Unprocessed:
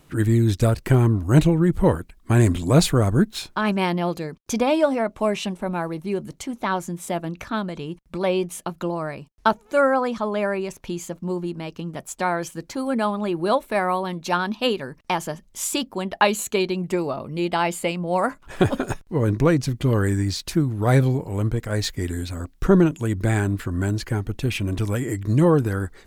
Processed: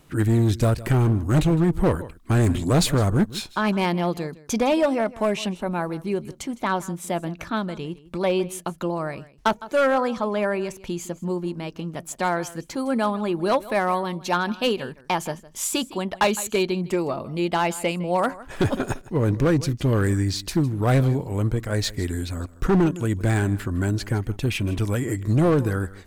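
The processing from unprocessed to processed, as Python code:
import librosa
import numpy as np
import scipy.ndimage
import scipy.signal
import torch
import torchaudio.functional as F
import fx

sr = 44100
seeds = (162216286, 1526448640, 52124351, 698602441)

y = x + 10.0 ** (-19.0 / 20.0) * np.pad(x, (int(159 * sr / 1000.0), 0))[:len(x)]
y = np.clip(y, -10.0 ** (-14.0 / 20.0), 10.0 ** (-14.0 / 20.0))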